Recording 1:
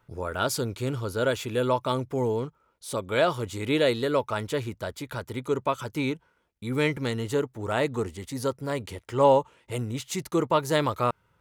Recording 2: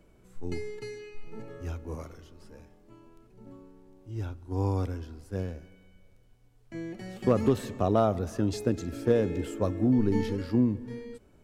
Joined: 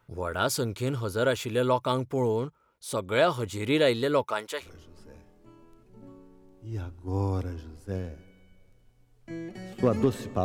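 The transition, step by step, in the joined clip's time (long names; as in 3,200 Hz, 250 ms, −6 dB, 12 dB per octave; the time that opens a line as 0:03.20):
recording 1
0:04.23–0:04.71: high-pass filter 210 Hz → 1,200 Hz
0:04.65: continue with recording 2 from 0:02.09, crossfade 0.12 s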